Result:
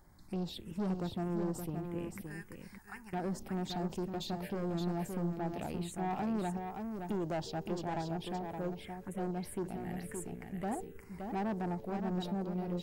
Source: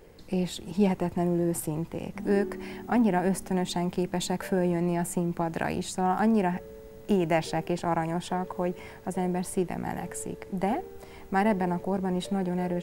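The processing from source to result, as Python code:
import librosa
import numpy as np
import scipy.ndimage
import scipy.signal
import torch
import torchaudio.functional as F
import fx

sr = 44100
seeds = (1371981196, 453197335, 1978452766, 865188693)

p1 = fx.tone_stack(x, sr, knobs='10-0-10', at=(2.21, 3.13))
p2 = fx.level_steps(p1, sr, step_db=14)
p3 = p1 + (p2 * 10.0 ** (-2.0 / 20.0))
p4 = fx.env_phaser(p3, sr, low_hz=430.0, high_hz=2300.0, full_db=-20.0)
p5 = 10.0 ** (-22.0 / 20.0) * np.tanh(p4 / 10.0 ** (-22.0 / 20.0))
p6 = p5 + 10.0 ** (-6.0 / 20.0) * np.pad(p5, (int(570 * sr / 1000.0), 0))[:len(p5)]
y = p6 * 10.0 ** (-9.0 / 20.0)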